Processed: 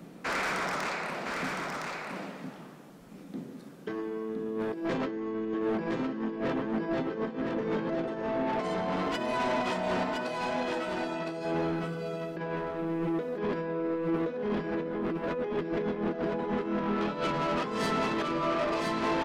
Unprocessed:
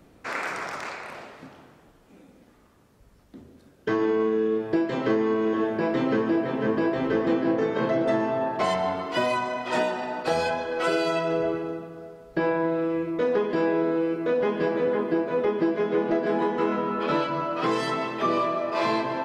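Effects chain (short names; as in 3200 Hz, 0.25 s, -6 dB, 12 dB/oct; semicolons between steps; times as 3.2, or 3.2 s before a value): resonant low shelf 120 Hz -12 dB, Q 3; negative-ratio compressor -27 dBFS, ratio -0.5; 10.03–11.45 resonator 65 Hz, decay 0.27 s, harmonics all, mix 80%; soft clip -27 dBFS, distortion -9 dB; echo 1.012 s -4 dB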